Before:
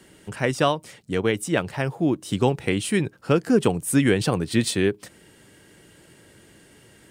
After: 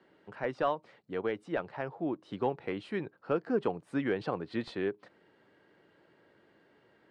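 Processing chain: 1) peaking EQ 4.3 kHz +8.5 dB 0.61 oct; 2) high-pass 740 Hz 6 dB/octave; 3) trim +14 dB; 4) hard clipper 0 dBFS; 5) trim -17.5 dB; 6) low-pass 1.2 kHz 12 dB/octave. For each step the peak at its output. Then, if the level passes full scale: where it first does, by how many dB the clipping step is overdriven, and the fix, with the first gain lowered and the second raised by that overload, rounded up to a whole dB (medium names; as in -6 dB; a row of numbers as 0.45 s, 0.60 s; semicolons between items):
-4.5 dBFS, -6.5 dBFS, +7.5 dBFS, 0.0 dBFS, -17.5 dBFS, -17.5 dBFS; step 3, 7.5 dB; step 3 +6 dB, step 5 -9.5 dB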